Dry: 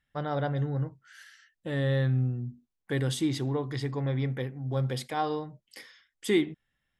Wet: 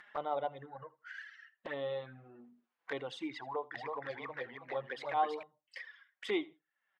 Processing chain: HPF 910 Hz 12 dB/oct; reverb removal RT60 2 s; LPF 1600 Hz 12 dB/oct; upward compressor, threshold -44 dBFS; envelope flanger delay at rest 6.4 ms, full sweep at -40.5 dBFS; feedback echo 80 ms, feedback 18%, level -22 dB; 3.43–5.43 warbling echo 0.317 s, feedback 31%, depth 168 cents, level -4 dB; gain +7.5 dB

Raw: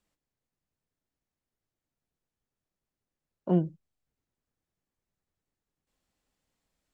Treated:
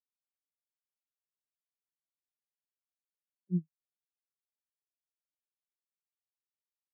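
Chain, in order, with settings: spectral expander 4:1; gain -8 dB

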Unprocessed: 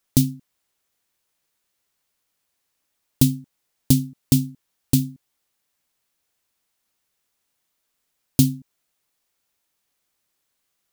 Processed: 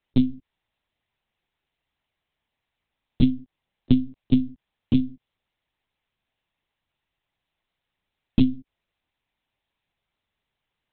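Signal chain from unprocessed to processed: notch 1400 Hz, Q 5.5; monotone LPC vocoder at 8 kHz 130 Hz

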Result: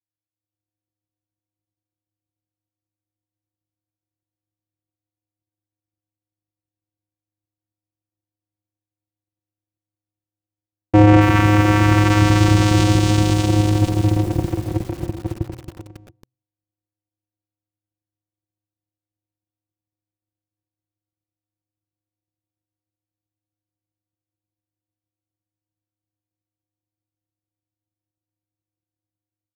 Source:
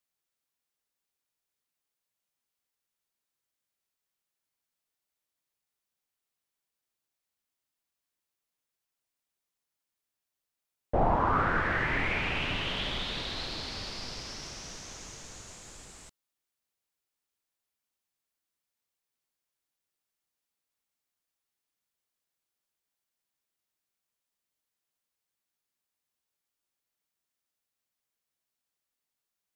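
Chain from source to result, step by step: Wiener smoothing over 41 samples; in parallel at -5 dB: fuzz box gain 48 dB, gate -45 dBFS; on the sum: AGC gain up to 10 dB; vocoder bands 4, square 104 Hz; de-hum 127.8 Hz, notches 5; small resonant body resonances 210/340 Hz, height 11 dB, ringing for 80 ms; on a send: echo 0.118 s -20.5 dB; on the sum: lo-fi delay 0.274 s, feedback 55%, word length 5-bit, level -9 dB; gain -1.5 dB

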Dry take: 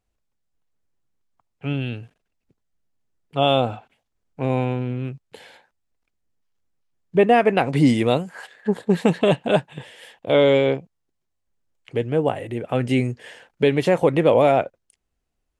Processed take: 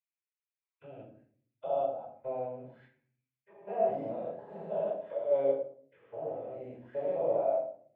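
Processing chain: stepped spectrum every 0.4 s; auto-wah 630–2300 Hz, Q 4.9, down, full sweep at -28 dBFS; time stretch by phase-locked vocoder 0.51×; shoebox room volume 590 m³, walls furnished, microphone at 4.9 m; gain -8.5 dB

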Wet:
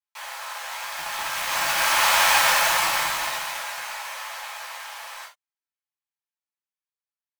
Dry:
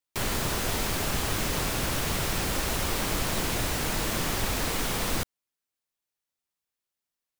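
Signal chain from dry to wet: Doppler pass-by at 2.28, 13 m/s, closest 5.6 m; inverse Chebyshev high-pass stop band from 370 Hz, stop band 40 dB; high shelf 4100 Hz -9 dB; in parallel at -4 dB: bit-crush 6-bit; on the sum: non-linear reverb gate 0.11 s falling, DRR -5.5 dB; gain +7 dB

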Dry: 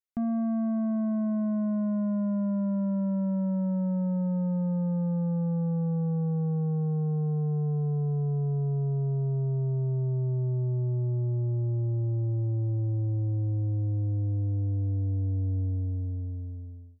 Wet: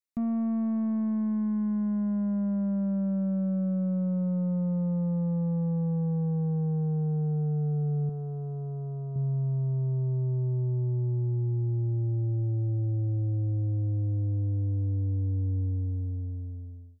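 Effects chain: tracing distortion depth 0.043 ms; 8.09–9.16 low shelf 190 Hz -10.5 dB; cascading phaser falling 0.21 Hz

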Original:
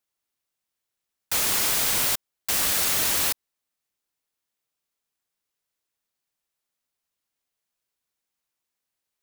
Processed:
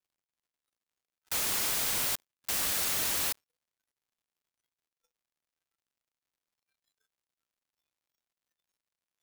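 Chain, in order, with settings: crackle 150/s -42 dBFS; spectral noise reduction 21 dB; gain -7 dB

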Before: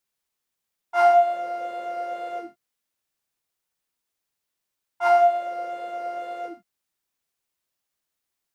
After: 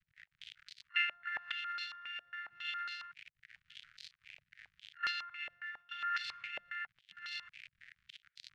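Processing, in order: reverse delay 0.624 s, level -0.5 dB; crackle 52/s -34 dBFS; level quantiser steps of 21 dB; harmoniser +4 st -3 dB, +7 st -18 dB, +12 st -8 dB; reverse; compressor 10:1, threshold -28 dBFS, peak gain reduction 12.5 dB; reverse; low shelf 200 Hz -12 dB; limiter -27 dBFS, peak gain reduction 9.5 dB; inverse Chebyshev band-stop 290–930 Hz, stop band 50 dB; stepped low-pass 7.3 Hz 610–4300 Hz; gain +7 dB

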